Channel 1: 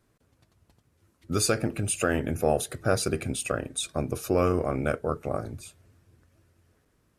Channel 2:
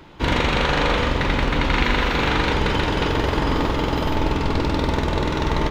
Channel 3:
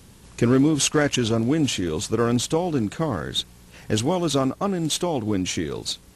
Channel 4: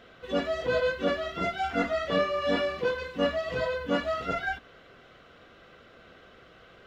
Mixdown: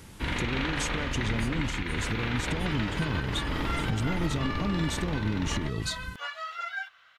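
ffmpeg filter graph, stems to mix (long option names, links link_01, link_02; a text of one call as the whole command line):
ffmpeg -i stem1.wav -i stem2.wav -i stem3.wav -i stem4.wav -filter_complex "[0:a]volume=-18.5dB[link_01];[1:a]equalizer=frequency=500:width_type=o:width=1:gain=-6,equalizer=frequency=1000:width_type=o:width=1:gain=-3,equalizer=frequency=2000:width_type=o:width=1:gain=4,equalizer=frequency=8000:width_type=o:width=1:gain=-6,volume=-8dB[link_02];[2:a]acompressor=threshold=-29dB:ratio=6,asubboost=boost=5.5:cutoff=230,volume=-0.5dB[link_03];[3:a]highpass=frequency=990:width=0.5412,highpass=frequency=990:width=1.3066,acontrast=50,adelay=2300,volume=-8dB[link_04];[link_01][link_02][link_03][link_04]amix=inputs=4:normalize=0,alimiter=limit=-18.5dB:level=0:latency=1:release=263" out.wav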